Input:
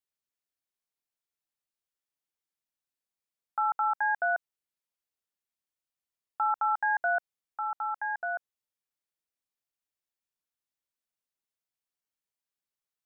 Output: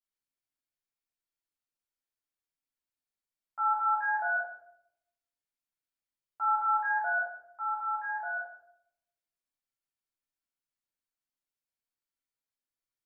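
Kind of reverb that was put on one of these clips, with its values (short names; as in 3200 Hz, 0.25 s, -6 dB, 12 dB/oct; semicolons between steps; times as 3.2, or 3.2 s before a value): shoebox room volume 160 m³, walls mixed, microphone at 3.1 m; gain -14 dB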